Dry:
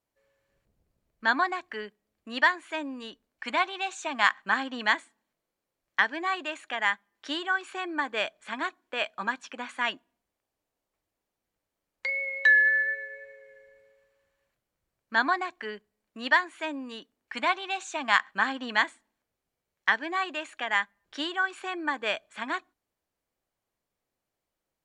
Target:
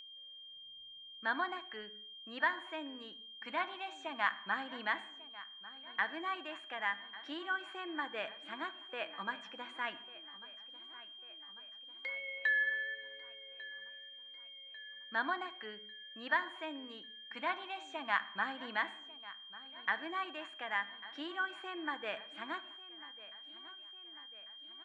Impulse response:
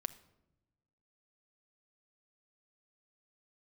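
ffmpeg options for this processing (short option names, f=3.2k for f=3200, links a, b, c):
-filter_complex "[0:a]aeval=exprs='val(0)+0.0178*sin(2*PI*3200*n/s)':c=same,acrossover=split=3000[a][b];[b]acompressor=threshold=-51dB:ratio=4:attack=1:release=60[c];[a][c]amix=inputs=2:normalize=0,aecho=1:1:1146|2292|3438|4584|5730:0.126|0.073|0.0424|0.0246|0.0142[d];[1:a]atrim=start_sample=2205,afade=t=out:st=0.31:d=0.01,atrim=end_sample=14112,asetrate=42336,aresample=44100[e];[d][e]afir=irnorm=-1:irlink=0,volume=-8.5dB"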